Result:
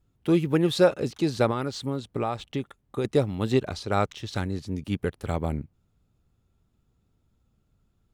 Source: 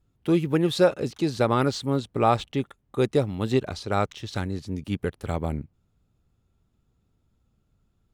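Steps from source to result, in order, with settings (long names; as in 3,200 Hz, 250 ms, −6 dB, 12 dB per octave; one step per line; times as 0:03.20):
0:01.50–0:03.05: downward compressor 6 to 1, threshold −25 dBFS, peak gain reduction 10 dB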